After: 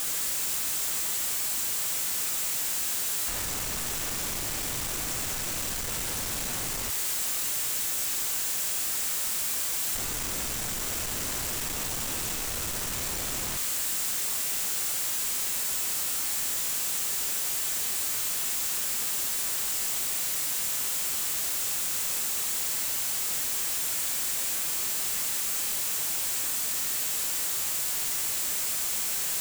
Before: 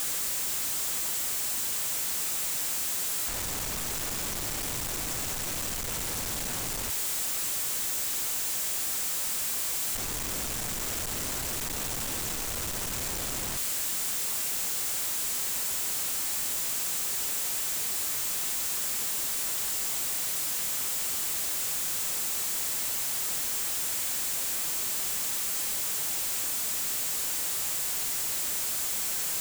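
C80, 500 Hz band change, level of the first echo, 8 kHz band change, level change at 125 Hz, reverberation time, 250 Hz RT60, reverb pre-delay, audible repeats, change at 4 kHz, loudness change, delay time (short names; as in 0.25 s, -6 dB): 9.5 dB, 0.0 dB, none, +1.5 dB, 0.0 dB, 1.2 s, 1.2 s, 15 ms, none, +1.5 dB, +1.0 dB, none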